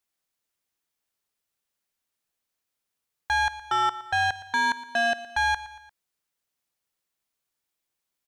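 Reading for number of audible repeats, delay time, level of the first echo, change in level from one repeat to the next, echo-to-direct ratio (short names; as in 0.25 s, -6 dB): 3, 0.116 s, -16.0 dB, -6.0 dB, -15.0 dB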